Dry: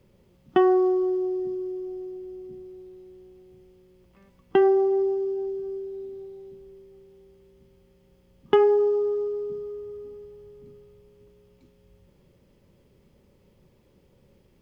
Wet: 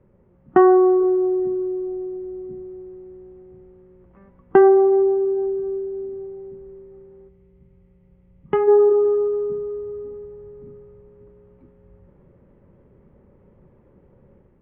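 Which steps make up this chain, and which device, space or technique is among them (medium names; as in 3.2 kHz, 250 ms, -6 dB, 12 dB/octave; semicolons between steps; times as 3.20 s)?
time-frequency box 7.29–8.68 s, 210–1900 Hz -9 dB; dynamic bell 1.4 kHz, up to +4 dB, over -45 dBFS, Q 1.2; action camera in a waterproof case (low-pass 1.7 kHz 24 dB/octave; level rider gain up to 4.5 dB; trim +2.5 dB; AAC 48 kbps 44.1 kHz)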